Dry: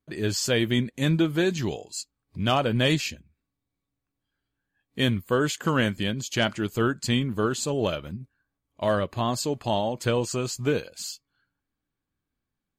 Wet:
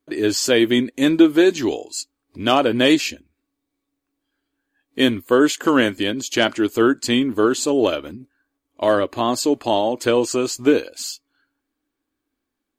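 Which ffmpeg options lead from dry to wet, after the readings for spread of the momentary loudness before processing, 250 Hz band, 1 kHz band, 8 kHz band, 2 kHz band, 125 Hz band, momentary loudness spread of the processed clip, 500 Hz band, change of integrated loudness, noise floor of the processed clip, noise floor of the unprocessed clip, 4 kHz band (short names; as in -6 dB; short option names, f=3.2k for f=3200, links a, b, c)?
12 LU, +9.0 dB, +6.5 dB, +6.0 dB, +6.0 dB, -6.0 dB, 13 LU, +8.5 dB, +7.5 dB, -80 dBFS, -85 dBFS, +6.0 dB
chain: -af "lowshelf=f=220:t=q:w=3:g=-8.5,volume=6dB"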